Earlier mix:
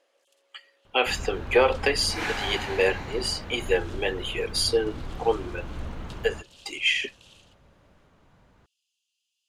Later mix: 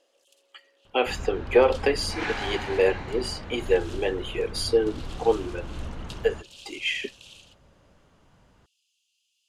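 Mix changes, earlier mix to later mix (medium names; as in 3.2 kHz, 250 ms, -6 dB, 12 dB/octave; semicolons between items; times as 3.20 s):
speech: add tilt shelf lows +5.5 dB, about 740 Hz; first sound +6.0 dB; second sound: add distance through air 91 m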